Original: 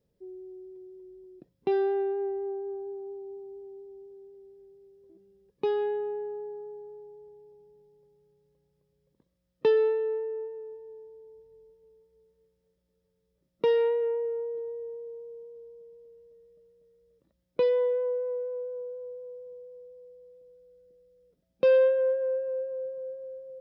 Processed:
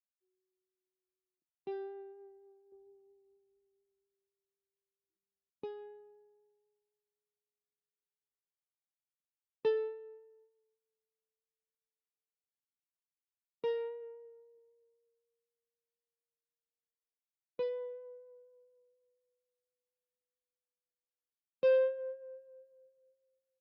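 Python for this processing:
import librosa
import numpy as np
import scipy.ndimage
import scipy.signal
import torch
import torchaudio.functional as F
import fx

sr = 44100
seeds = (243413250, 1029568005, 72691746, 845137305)

y = fx.low_shelf(x, sr, hz=320.0, db=11.0, at=(2.72, 5.64))
y = fx.upward_expand(y, sr, threshold_db=-46.0, expansion=2.5)
y = F.gain(torch.from_numpy(y), -6.0).numpy()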